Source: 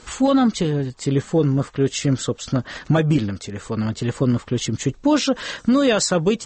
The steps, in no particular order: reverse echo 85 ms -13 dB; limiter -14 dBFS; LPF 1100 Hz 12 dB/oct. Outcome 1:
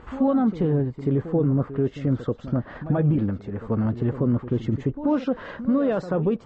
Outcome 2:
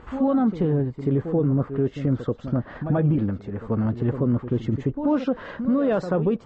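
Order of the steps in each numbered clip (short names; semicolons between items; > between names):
limiter > reverse echo > LPF; reverse echo > LPF > limiter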